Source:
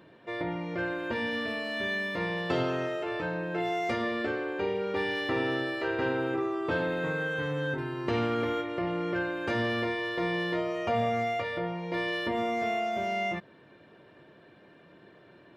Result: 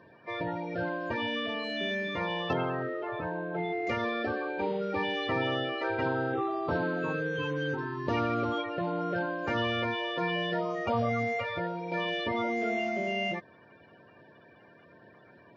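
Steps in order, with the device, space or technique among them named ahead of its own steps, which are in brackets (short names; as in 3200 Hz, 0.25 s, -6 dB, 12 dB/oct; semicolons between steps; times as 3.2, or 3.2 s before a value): clip after many re-uploads (LPF 6100 Hz 24 dB/oct; bin magnitudes rounded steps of 30 dB); 2.53–3.87 air absorption 370 m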